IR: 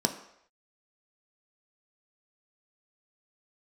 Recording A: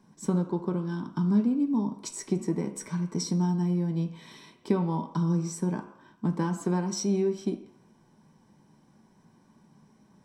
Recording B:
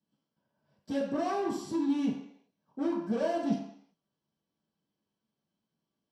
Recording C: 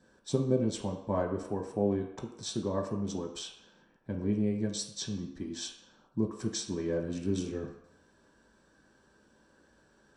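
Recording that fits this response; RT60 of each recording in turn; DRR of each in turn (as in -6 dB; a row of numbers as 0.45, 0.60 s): A; not exponential, not exponential, not exponential; 4.5, -10.0, -1.5 dB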